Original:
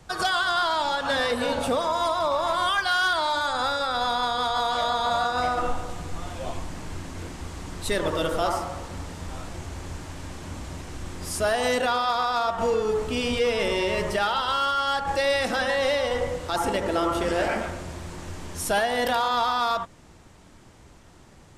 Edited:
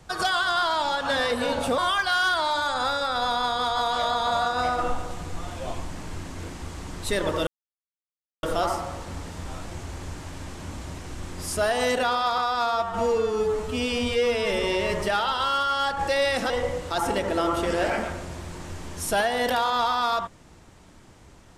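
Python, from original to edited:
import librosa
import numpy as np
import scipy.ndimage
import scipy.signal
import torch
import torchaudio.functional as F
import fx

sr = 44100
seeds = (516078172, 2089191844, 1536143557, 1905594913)

y = fx.edit(x, sr, fx.cut(start_s=1.78, length_s=0.79),
    fx.insert_silence(at_s=8.26, length_s=0.96),
    fx.stretch_span(start_s=12.21, length_s=1.5, factor=1.5),
    fx.cut(start_s=15.58, length_s=0.5), tone=tone)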